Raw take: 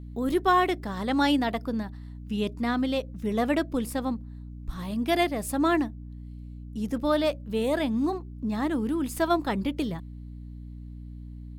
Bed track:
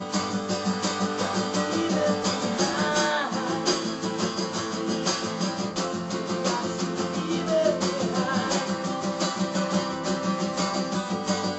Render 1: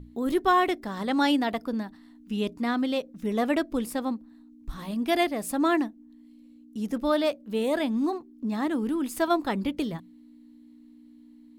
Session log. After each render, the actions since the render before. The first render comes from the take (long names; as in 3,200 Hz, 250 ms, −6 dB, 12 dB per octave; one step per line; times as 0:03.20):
mains-hum notches 60/120/180 Hz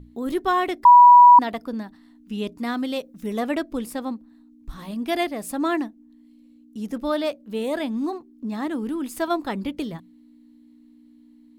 0:00.85–0:01.39: beep over 975 Hz −6 dBFS
0:02.58–0:03.40: high-shelf EQ 7,300 Hz +8.5 dB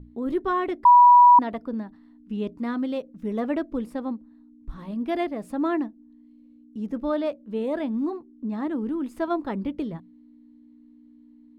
low-pass filter 1,000 Hz 6 dB per octave
notch filter 740 Hz, Q 12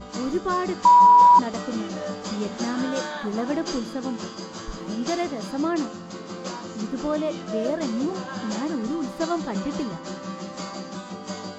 mix in bed track −7.5 dB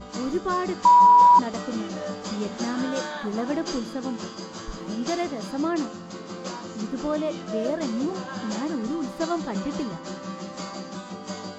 level −1 dB